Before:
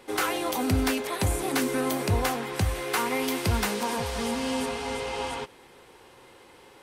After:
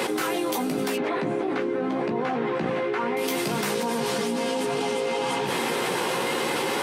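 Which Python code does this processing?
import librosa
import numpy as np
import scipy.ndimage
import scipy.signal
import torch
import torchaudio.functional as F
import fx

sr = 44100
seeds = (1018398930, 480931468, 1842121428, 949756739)

y = fx.octave_divider(x, sr, octaves=2, level_db=3.0)
y = scipy.signal.sosfilt(scipy.signal.butter(6, 150.0, 'highpass', fs=sr, output='sos'), y)
y = fx.dynamic_eq(y, sr, hz=370.0, q=1.7, threshold_db=-41.0, ratio=4.0, max_db=5)
y = fx.lowpass(y, sr, hz=2300.0, slope=12, at=(0.96, 3.17))
y = fx.chorus_voices(y, sr, voices=4, hz=0.81, base_ms=15, depth_ms=2.2, mix_pct=40)
y = fx.env_flatten(y, sr, amount_pct=100)
y = y * 10.0 ** (-2.0 / 20.0)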